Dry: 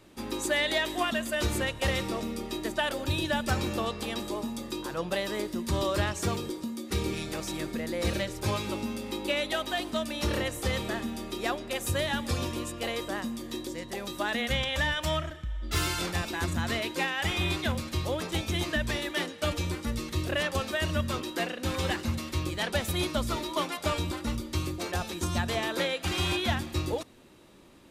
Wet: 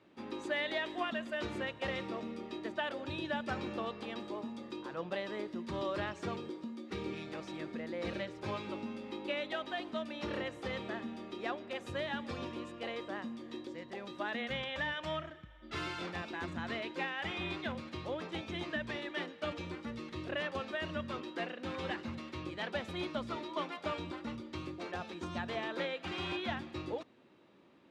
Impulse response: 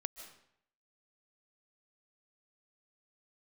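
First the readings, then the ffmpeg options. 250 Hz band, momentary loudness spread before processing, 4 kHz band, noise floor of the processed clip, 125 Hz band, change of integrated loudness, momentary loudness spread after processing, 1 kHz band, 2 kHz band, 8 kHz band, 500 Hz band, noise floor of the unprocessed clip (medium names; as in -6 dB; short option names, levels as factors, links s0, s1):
-7.5 dB, 6 LU, -11.0 dB, -54 dBFS, -14.5 dB, -9.0 dB, 6 LU, -7.0 dB, -7.5 dB, -23.0 dB, -7.0 dB, -43 dBFS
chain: -af "highpass=150,lowpass=3100,volume=0.447"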